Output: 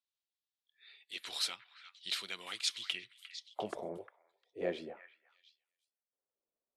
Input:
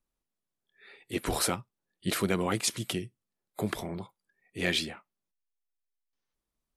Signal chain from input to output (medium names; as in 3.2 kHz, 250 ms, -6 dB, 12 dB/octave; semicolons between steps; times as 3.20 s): band-pass sweep 3.7 kHz -> 530 Hz, 2.74–3.80 s; 3.97–4.61 s: static phaser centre 470 Hz, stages 4; on a send: repeats whose band climbs or falls 353 ms, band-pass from 1.7 kHz, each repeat 1.4 oct, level -9 dB; on the sum: trim +2 dB